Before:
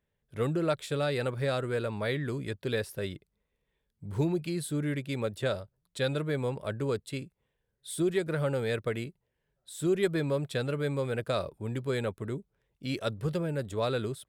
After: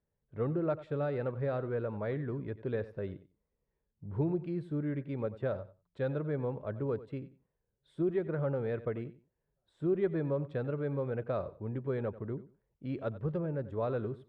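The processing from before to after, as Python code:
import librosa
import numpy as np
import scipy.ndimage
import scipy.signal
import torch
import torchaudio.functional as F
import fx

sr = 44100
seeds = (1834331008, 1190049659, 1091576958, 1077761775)

p1 = scipy.signal.sosfilt(scipy.signal.butter(2, 1200.0, 'lowpass', fs=sr, output='sos'), x)
p2 = p1 + fx.echo_feedback(p1, sr, ms=92, feedback_pct=19, wet_db=-16, dry=0)
y = F.gain(torch.from_numpy(p2), -3.0).numpy()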